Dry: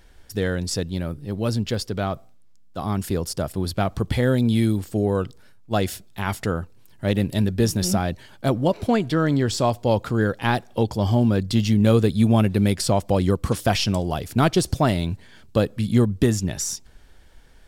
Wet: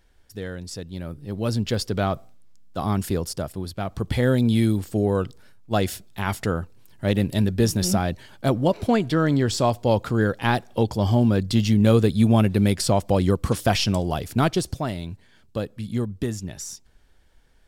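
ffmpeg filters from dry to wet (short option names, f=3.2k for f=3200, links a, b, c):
-af "volume=10dB,afade=t=in:st=0.82:d=1.12:silence=0.281838,afade=t=out:st=2.83:d=0.92:silence=0.316228,afade=t=in:st=3.75:d=0.5:silence=0.398107,afade=t=out:st=14.24:d=0.59:silence=0.398107"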